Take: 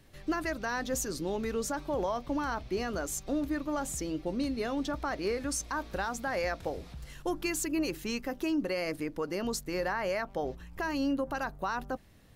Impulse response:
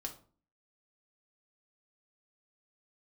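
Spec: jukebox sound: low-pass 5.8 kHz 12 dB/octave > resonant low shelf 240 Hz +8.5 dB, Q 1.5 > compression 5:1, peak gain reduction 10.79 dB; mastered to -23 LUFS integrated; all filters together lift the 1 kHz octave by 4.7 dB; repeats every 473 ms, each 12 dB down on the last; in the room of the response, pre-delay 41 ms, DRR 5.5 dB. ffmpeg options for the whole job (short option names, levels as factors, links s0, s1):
-filter_complex "[0:a]equalizer=f=1000:t=o:g=6.5,aecho=1:1:473|946|1419:0.251|0.0628|0.0157,asplit=2[s0][s1];[1:a]atrim=start_sample=2205,adelay=41[s2];[s1][s2]afir=irnorm=-1:irlink=0,volume=0.631[s3];[s0][s3]amix=inputs=2:normalize=0,lowpass=5800,lowshelf=f=240:t=q:w=1.5:g=8.5,acompressor=threshold=0.0224:ratio=5,volume=5.01"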